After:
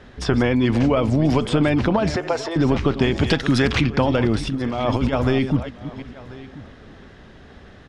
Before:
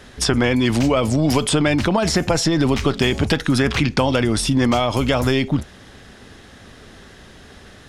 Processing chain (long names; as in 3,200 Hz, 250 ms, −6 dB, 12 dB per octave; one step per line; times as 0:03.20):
delay that plays each chunk backwards 317 ms, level −12.5 dB
0:02.16–0:02.56: elliptic high-pass filter 380 Hz
0:03.16–0:03.81: high-shelf EQ 2,900 Hz +12 dB
0:04.47–0:05.13: compressor whose output falls as the input rises −20 dBFS, ratio −0.5
head-to-tape spacing loss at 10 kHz 21 dB
single-tap delay 1,037 ms −19.5 dB